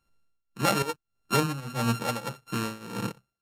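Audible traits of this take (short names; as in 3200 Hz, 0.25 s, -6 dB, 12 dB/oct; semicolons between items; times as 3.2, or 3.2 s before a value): a buzz of ramps at a fixed pitch in blocks of 32 samples; tremolo triangle 1.7 Hz, depth 90%; Vorbis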